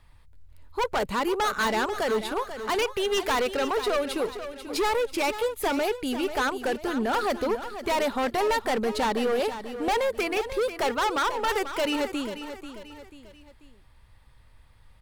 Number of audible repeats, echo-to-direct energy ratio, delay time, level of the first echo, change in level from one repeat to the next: 3, -10.0 dB, 0.489 s, -11.0 dB, -7.5 dB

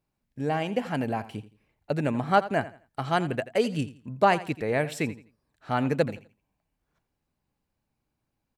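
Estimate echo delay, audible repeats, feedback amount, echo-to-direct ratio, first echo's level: 84 ms, 2, 27%, -15.5 dB, -16.0 dB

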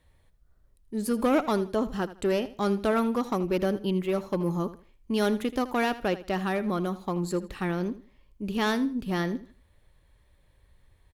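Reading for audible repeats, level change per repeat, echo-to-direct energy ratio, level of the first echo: 2, -11.5 dB, -15.0 dB, -15.5 dB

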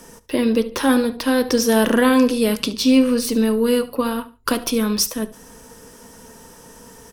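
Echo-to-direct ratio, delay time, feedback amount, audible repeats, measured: -17.5 dB, 72 ms, 28%, 2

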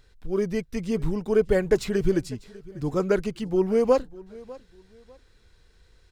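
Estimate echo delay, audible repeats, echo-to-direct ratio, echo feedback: 0.598 s, 2, -20.5 dB, 28%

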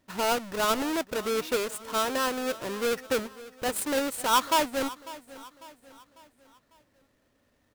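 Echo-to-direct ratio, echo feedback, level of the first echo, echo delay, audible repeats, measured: -17.0 dB, 45%, -18.0 dB, 0.548 s, 3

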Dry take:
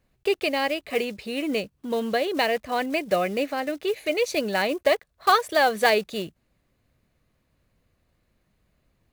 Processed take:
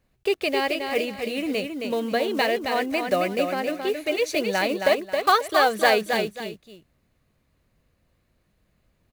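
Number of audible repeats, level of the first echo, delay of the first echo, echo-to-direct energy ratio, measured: 2, -5.5 dB, 0.269 s, -5.0 dB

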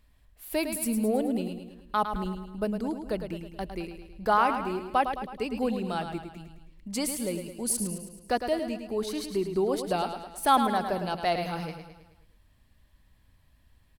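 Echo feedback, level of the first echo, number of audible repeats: 52%, -8.0 dB, 5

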